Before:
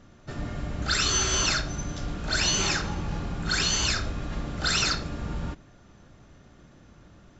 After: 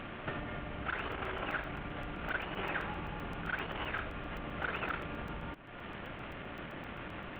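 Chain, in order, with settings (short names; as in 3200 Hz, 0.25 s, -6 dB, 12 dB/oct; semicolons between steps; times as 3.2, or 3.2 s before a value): CVSD 16 kbps; compressor 6:1, threshold -47 dBFS, peak gain reduction 21 dB; low shelf 260 Hz -12 dB; crackling interface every 0.13 s, samples 128, zero, from 0.99; gain +15 dB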